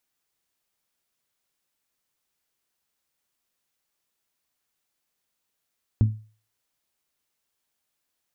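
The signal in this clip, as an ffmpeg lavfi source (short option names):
-f lavfi -i "aevalsrc='0.251*pow(10,-3*t/0.38)*sin(2*PI*108*t)+0.0891*pow(10,-3*t/0.234)*sin(2*PI*216*t)+0.0316*pow(10,-3*t/0.206)*sin(2*PI*259.2*t)+0.0112*pow(10,-3*t/0.176)*sin(2*PI*324*t)+0.00398*pow(10,-3*t/0.144)*sin(2*PI*432*t)':d=0.89:s=44100"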